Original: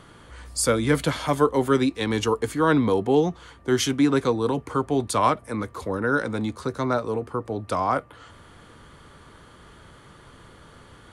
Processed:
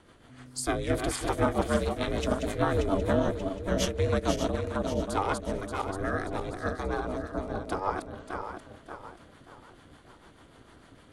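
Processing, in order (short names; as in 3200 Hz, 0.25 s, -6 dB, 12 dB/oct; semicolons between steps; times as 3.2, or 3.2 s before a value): regenerating reverse delay 0.291 s, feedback 61%, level -4 dB; rotary speaker horn 6.7 Hz; ring modulator 190 Hz; gain -3 dB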